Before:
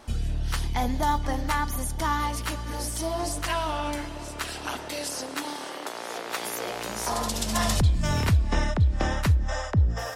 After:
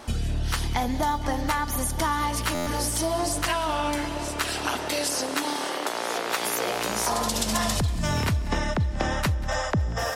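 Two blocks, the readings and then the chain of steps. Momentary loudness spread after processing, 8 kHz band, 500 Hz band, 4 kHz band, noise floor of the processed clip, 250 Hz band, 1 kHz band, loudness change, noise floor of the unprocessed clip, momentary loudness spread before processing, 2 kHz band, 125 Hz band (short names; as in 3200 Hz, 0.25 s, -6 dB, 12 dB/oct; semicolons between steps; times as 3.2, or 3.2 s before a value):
3 LU, +4.0 dB, +4.0 dB, +4.0 dB, -31 dBFS, +2.5 dB, +2.5 dB, +1.5 dB, -37 dBFS, 10 LU, +3.5 dB, -2.5 dB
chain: low shelf 74 Hz -7.5 dB; compressor, threshold -29 dBFS, peak gain reduction 10 dB; on a send: multi-head echo 94 ms, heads second and third, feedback 46%, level -20 dB; on the sum: stuck buffer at 2.54, samples 512, times 10; gain +7 dB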